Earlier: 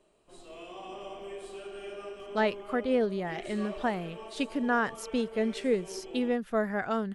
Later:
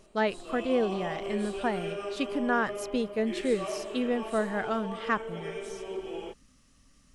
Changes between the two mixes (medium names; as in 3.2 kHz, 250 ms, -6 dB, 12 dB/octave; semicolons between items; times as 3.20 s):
speech: entry -2.20 s; background +6.0 dB